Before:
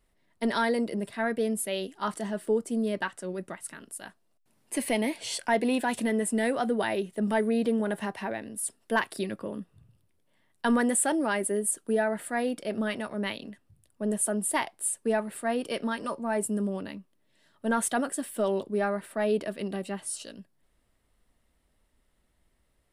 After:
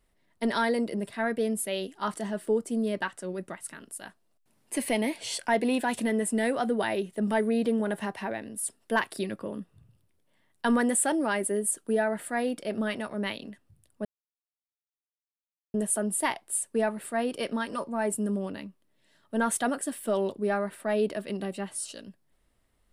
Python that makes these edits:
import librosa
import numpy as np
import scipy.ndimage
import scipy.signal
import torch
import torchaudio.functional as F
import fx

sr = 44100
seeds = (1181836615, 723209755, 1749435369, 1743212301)

y = fx.edit(x, sr, fx.insert_silence(at_s=14.05, length_s=1.69), tone=tone)